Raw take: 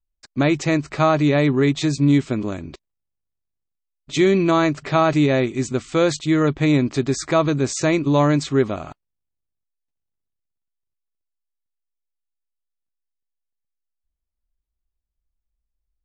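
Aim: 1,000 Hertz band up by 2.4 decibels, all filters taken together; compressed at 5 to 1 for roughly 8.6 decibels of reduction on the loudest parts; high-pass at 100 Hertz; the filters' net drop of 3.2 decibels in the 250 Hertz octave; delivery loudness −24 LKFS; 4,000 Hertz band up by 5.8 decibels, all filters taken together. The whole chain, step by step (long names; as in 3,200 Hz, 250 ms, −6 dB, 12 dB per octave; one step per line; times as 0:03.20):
high-pass filter 100 Hz
parametric band 250 Hz −4.5 dB
parametric band 1,000 Hz +3 dB
parametric band 4,000 Hz +6.5 dB
downward compressor 5 to 1, threshold −21 dBFS
level +1.5 dB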